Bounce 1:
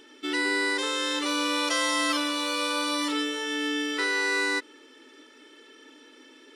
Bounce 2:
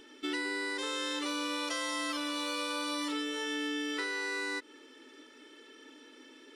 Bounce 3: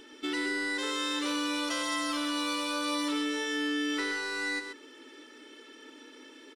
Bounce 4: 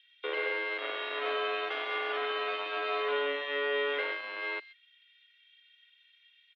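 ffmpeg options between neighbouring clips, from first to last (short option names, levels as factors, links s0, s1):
-af "acompressor=threshold=0.0355:ratio=6,lowshelf=f=120:g=9,volume=0.708"
-af "asoftclip=type=tanh:threshold=0.0473,aecho=1:1:129:0.422,volume=1.41"
-filter_complex "[0:a]acrossover=split=2400[s0][s1];[s0]acrusher=bits=4:mix=0:aa=0.5[s2];[s2][s1]amix=inputs=2:normalize=0,highpass=f=160:t=q:w=0.5412,highpass=f=160:t=q:w=1.307,lowpass=f=3100:t=q:w=0.5176,lowpass=f=3100:t=q:w=0.7071,lowpass=f=3100:t=q:w=1.932,afreqshift=130"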